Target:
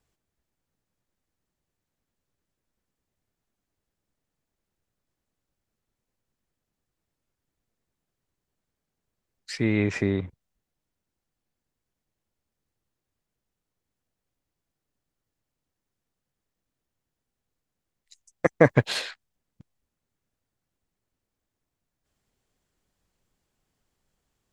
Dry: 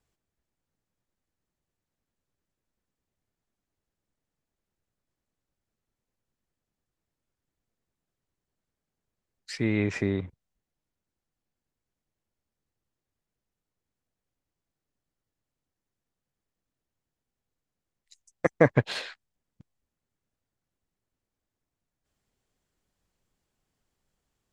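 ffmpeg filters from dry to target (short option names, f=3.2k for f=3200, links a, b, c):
-filter_complex "[0:a]asettb=1/sr,asplit=3[a][b][c];[a]atrim=end=18.644[d];[b]atrim=start=18.64:end=19.11,asetpts=PTS-STARTPTS,afade=t=in:d=0.004:c=qsin,afade=t=out:st=0.466:d=0.004:c=qsin,highshelf=f=6.2k:g=10.5[e];[c]atrim=start=19.106[f];[d][e]acrossfade=d=0.004:c1=hsin:c2=qsin[g];[g][f]acrossfade=d=0.004:c1=qsin:c2=hsin,volume=2.5dB"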